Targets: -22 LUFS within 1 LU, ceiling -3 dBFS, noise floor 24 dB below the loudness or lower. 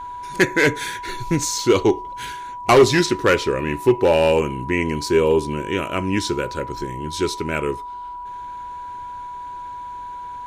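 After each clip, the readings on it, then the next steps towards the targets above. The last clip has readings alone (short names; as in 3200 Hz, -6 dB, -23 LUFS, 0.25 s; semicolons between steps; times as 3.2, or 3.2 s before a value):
steady tone 980 Hz; tone level -30 dBFS; loudness -20.0 LUFS; peak -2.5 dBFS; loudness target -22.0 LUFS
-> notch 980 Hz, Q 30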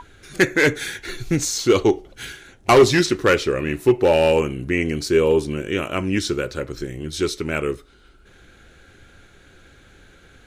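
steady tone none; loudness -20.0 LUFS; peak -2.0 dBFS; loudness target -22.0 LUFS
-> gain -2 dB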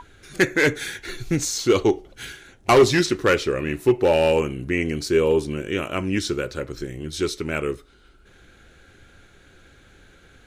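loudness -22.0 LUFS; peak -4.0 dBFS; noise floor -53 dBFS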